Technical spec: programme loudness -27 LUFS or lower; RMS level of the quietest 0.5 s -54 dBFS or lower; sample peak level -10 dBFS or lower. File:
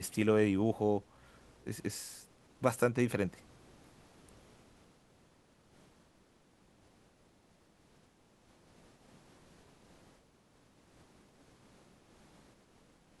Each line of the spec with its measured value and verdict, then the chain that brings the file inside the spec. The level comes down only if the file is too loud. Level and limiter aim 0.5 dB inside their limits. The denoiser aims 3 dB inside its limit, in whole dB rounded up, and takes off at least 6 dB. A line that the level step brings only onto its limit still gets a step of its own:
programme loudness -33.0 LUFS: pass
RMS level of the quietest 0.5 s -67 dBFS: pass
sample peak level -13.0 dBFS: pass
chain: none needed

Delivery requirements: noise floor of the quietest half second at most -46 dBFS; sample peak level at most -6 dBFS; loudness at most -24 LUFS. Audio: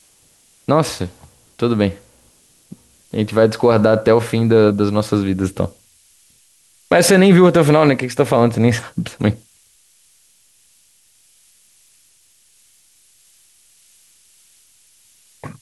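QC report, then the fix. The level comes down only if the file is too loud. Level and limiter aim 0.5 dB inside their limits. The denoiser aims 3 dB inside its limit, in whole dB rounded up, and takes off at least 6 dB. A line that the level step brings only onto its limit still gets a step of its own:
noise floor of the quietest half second -55 dBFS: pass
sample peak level -2.5 dBFS: fail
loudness -15.5 LUFS: fail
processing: trim -9 dB

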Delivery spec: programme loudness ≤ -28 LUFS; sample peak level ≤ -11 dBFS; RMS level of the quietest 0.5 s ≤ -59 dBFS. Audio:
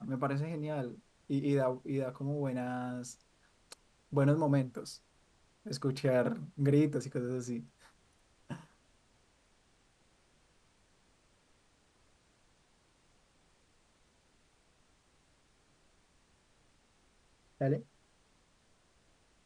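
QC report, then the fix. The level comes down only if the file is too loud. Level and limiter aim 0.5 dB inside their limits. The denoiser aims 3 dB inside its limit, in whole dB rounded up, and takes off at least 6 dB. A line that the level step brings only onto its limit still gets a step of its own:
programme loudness -34.5 LUFS: pass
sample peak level -16.5 dBFS: pass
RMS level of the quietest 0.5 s -69 dBFS: pass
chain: none needed

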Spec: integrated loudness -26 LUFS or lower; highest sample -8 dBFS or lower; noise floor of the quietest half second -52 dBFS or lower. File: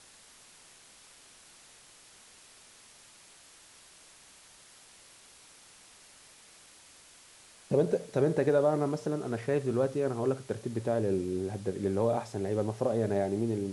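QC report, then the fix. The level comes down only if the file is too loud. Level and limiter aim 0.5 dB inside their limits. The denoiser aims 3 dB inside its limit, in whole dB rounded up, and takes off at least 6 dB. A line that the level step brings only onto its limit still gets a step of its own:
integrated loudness -30.5 LUFS: pass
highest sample -14.5 dBFS: pass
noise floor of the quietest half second -56 dBFS: pass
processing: none needed

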